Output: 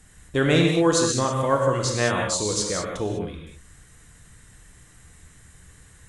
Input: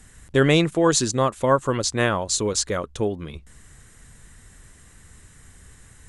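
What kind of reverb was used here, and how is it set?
reverb whose tail is shaped and stops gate 230 ms flat, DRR 0 dB
level −4 dB

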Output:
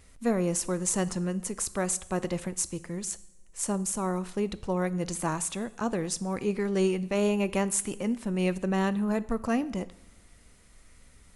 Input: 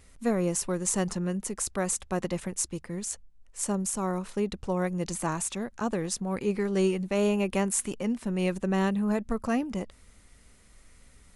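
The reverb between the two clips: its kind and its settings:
coupled-rooms reverb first 0.7 s, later 2.7 s, from −20 dB, DRR 15 dB

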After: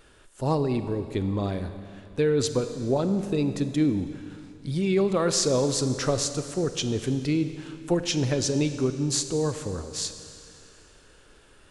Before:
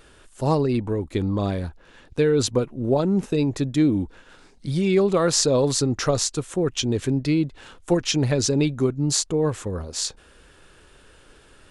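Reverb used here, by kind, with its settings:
four-comb reverb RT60 2.6 s, combs from 31 ms, DRR 9.5 dB
level −4 dB

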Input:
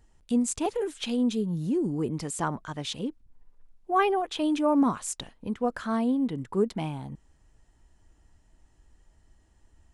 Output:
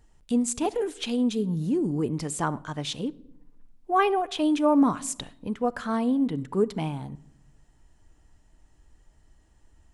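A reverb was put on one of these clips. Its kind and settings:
rectangular room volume 2,400 cubic metres, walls furnished, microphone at 0.41 metres
level +1.5 dB

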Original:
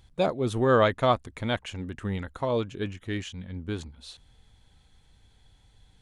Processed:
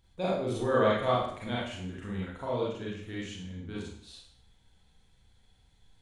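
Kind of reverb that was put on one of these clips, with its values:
four-comb reverb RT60 0.61 s, combs from 33 ms, DRR −6 dB
level −11 dB

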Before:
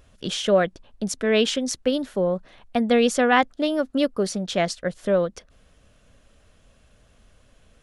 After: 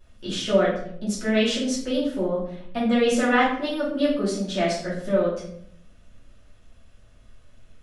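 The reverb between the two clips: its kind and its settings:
rectangular room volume 110 cubic metres, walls mixed, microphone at 2.7 metres
level −11.5 dB

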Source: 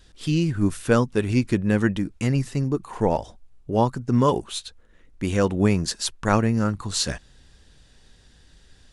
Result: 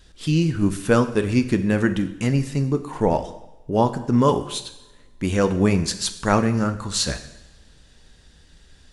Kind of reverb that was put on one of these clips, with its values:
coupled-rooms reverb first 0.86 s, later 2.6 s, from −25 dB, DRR 8.5 dB
level +1.5 dB

